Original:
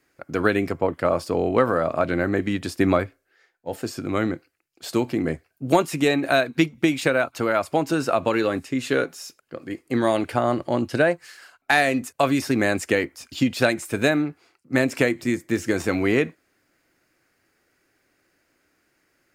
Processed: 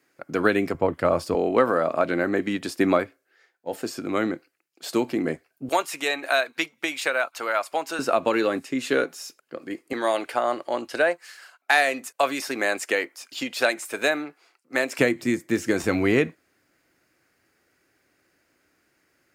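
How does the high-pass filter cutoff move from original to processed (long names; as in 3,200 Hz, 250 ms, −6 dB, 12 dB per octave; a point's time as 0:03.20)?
150 Hz
from 0:00.74 56 Hz
from 0:01.35 210 Hz
from 0:05.69 700 Hz
from 0:07.99 220 Hz
from 0:09.93 500 Hz
from 0:14.99 130 Hz
from 0:15.83 44 Hz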